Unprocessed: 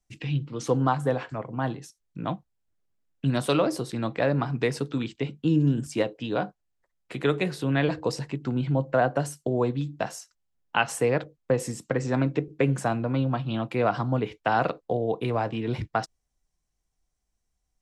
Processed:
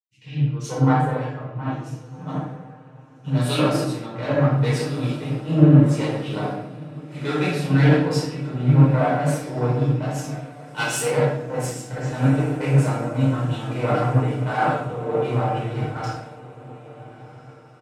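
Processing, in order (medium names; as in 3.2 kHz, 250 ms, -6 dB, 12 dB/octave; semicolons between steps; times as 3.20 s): single-diode clipper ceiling -23.5 dBFS; in parallel at -2.5 dB: peak limiter -18 dBFS, peak gain reduction 8 dB; on the sum: high-pass 83 Hz; peaking EQ 1.3 kHz +3.5 dB 0.28 oct; comb 6.6 ms, depth 48%; on a send: echo that smears into a reverb 1466 ms, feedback 62%, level -10 dB; on the sum: simulated room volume 630 m³, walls mixed, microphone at 4.8 m; three bands expanded up and down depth 100%; trim -12 dB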